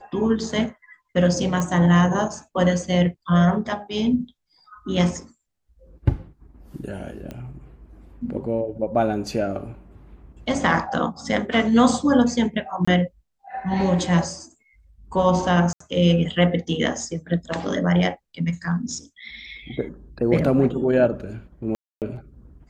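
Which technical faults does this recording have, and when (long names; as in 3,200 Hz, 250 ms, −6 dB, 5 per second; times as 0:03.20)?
0:01.60: click −13 dBFS
0:07.31: click −22 dBFS
0:12.85–0:12.88: drop-out 25 ms
0:15.73–0:15.80: drop-out 74 ms
0:21.75–0:22.02: drop-out 268 ms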